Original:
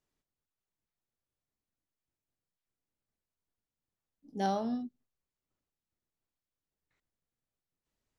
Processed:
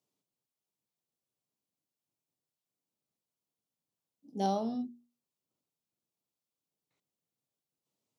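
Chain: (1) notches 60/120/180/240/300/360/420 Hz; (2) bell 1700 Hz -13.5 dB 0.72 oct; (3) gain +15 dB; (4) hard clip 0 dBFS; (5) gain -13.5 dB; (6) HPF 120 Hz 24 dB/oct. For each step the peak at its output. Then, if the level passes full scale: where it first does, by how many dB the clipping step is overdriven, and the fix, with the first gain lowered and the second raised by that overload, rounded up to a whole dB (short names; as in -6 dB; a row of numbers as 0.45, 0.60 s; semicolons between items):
-19.5, -20.0, -5.0, -5.0, -18.5, -20.5 dBFS; no overload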